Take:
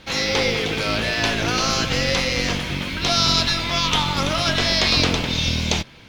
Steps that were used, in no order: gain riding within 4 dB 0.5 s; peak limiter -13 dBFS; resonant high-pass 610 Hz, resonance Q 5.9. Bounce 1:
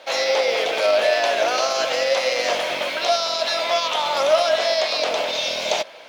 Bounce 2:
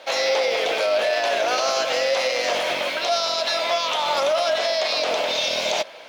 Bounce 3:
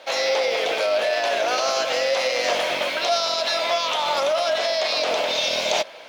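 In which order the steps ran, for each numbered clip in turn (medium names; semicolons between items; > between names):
peak limiter > gain riding > resonant high-pass; gain riding > resonant high-pass > peak limiter; resonant high-pass > peak limiter > gain riding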